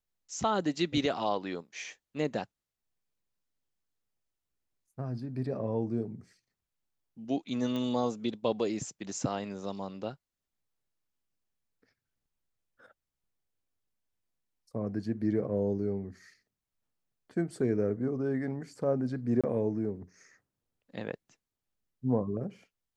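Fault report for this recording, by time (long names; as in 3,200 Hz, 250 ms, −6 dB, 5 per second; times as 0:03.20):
0:07.76: click −24 dBFS
0:19.41–0:19.44: drop-out 26 ms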